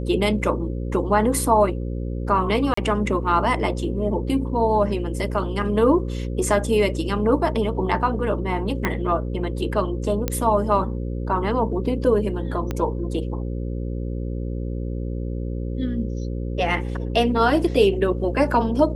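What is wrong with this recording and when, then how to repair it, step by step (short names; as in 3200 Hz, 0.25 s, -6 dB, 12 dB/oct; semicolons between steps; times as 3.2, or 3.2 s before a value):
buzz 60 Hz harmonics 9 -27 dBFS
2.74–2.77 gap 34 ms
8.85 pop -8 dBFS
10.28 pop -8 dBFS
12.71 pop -13 dBFS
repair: de-click; de-hum 60 Hz, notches 9; interpolate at 2.74, 34 ms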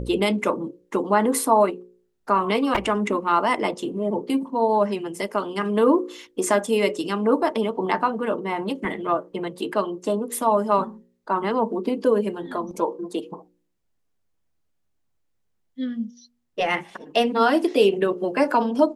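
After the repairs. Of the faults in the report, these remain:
8.85 pop
12.71 pop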